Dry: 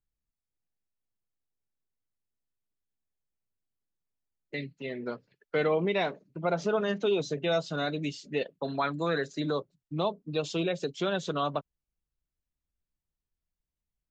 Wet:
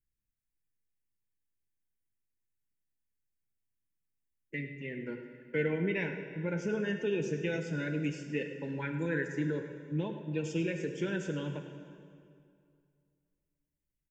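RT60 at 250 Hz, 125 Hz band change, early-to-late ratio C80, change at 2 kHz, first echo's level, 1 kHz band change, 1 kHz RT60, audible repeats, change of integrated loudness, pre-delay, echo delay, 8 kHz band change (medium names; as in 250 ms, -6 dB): 2.5 s, +1.0 dB, 7.5 dB, -1.5 dB, -13.5 dB, -14.5 dB, 2.3 s, 1, -4.0 dB, 3 ms, 104 ms, no reading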